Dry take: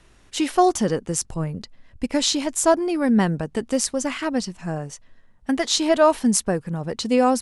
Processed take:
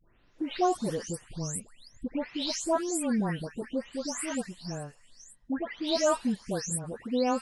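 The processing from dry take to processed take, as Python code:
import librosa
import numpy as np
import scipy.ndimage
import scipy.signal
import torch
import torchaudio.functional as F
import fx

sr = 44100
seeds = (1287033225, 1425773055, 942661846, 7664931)

y = fx.spec_delay(x, sr, highs='late', ms=381)
y = F.gain(torch.from_numpy(y), -9.0).numpy()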